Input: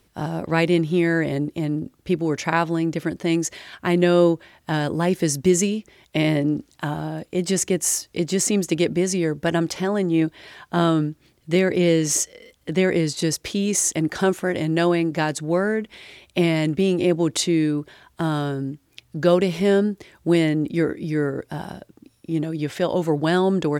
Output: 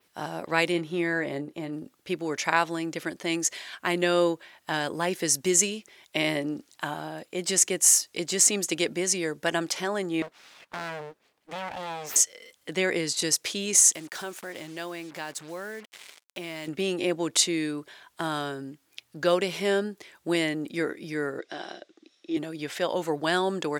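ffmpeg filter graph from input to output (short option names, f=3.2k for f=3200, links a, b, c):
-filter_complex "[0:a]asettb=1/sr,asplit=3[a][b][c];[a]atrim=end=0.724[d];[b]atrim=start=0.72:end=1.73,asetpts=PTS-STARTPTS,afade=t=in:d=0.004:c=qsin,afade=t=out:st=1.006:d=0.004:c=qsin,highshelf=f=2.5k:g=-8.5,asplit=2[e][f];[f]adelay=29,volume=-13.5dB[g];[e][g]amix=inputs=2:normalize=0,atrim=end_sample=44541[h];[c]atrim=start=1.726[i];[d][h]acrossfade=d=0.004:c1=hsin:c2=qsin[j];[j][i]acrossfade=d=0.004:c1=qsin:c2=hsin,asettb=1/sr,asplit=3[k][l][m];[k]atrim=end=10.224[n];[l]atrim=start=10.22:end=12.16,asetpts=PTS-STARTPTS,afade=t=in:d=0.004:c=qsin,afade=t=out:st=1.936:d=0.004:c=qsin,highshelf=f=2.9k:g=-12,acompressor=threshold=-23dB:ratio=3:attack=3.2:release=140:knee=1:detection=peak,aeval=exprs='abs(val(0))':c=same[o];[m]atrim=start=12.156[p];[n][o]acrossfade=d=0.004:c1=hsin:c2=qsin[q];[q][p]acrossfade=d=0.004:c1=qsin:c2=hsin,asettb=1/sr,asplit=3[r][s][t];[r]atrim=end=13.954[u];[s]atrim=start=13.95:end=16.68,asetpts=PTS-STARTPTS,afade=t=in:d=0.004:c=qsin,afade=t=out:st=2.726:d=0.004:c=qsin,acrusher=bits=5:mix=0:aa=0.5,acompressor=threshold=-35dB:ratio=2:attack=3.2:release=140:knee=1:detection=peak[v];[t]atrim=start=16.676[w];[u][v]acrossfade=d=0.004:c1=hsin:c2=qsin[x];[x][w]acrossfade=d=0.004:c1=qsin:c2=hsin,asettb=1/sr,asplit=3[y][z][aa];[y]atrim=end=21.394[ab];[z]atrim=start=21.39:end=22.37,asetpts=PTS-STARTPTS,afade=t=in:d=0.004:c=qsin,afade=t=out:st=0.976:d=0.004:c=qsin,highpass=300,equalizer=f=340:t=q:w=4:g=10,equalizer=f=670:t=q:w=4:g=3,equalizer=f=960:t=q:w=4:g=-5,equalizer=f=2k:t=q:w=4:g=4,equalizer=f=3.6k:t=q:w=4:g=8,equalizer=f=5.9k:t=q:w=4:g=3,lowpass=f=6.7k:w=0.5412,lowpass=f=6.7k:w=1.3066,bandreject=f=890:w=8.5[ac];[aa]atrim=start=22.366[ad];[ab][ac]acrossfade=d=0.004:c1=hsin:c2=qsin[ae];[ae][ad]acrossfade=d=0.004:c1=qsin:c2=hsin,highpass=f=830:p=1,adynamicequalizer=threshold=0.0158:dfrequency=8200:dqfactor=0.8:tfrequency=8200:tqfactor=0.8:attack=5:release=100:ratio=0.375:range=2:mode=boostabove:tftype=bell"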